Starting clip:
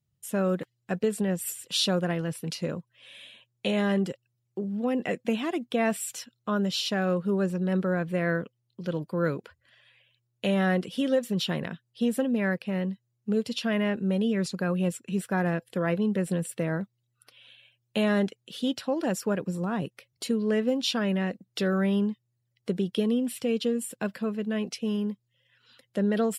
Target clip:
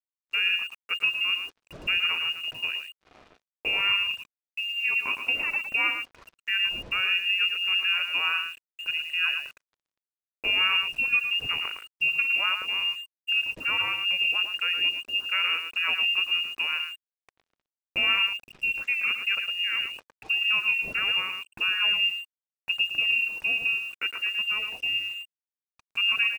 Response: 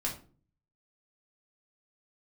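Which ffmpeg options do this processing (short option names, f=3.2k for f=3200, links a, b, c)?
-filter_complex "[0:a]lowpass=f=2.6k:t=q:w=0.5098,lowpass=f=2.6k:t=q:w=0.6013,lowpass=f=2.6k:t=q:w=0.9,lowpass=f=2.6k:t=q:w=2.563,afreqshift=-3000,asplit=2[a][b];[b]adelay=110.8,volume=-7dB,highshelf=f=4k:g=-2.49[c];[a][c]amix=inputs=2:normalize=0,acrusher=bits=7:mix=0:aa=0.5"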